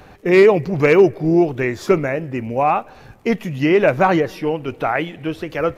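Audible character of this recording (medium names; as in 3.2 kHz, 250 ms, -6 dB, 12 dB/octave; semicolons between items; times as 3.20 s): noise floor -44 dBFS; spectral tilt -3.5 dB/octave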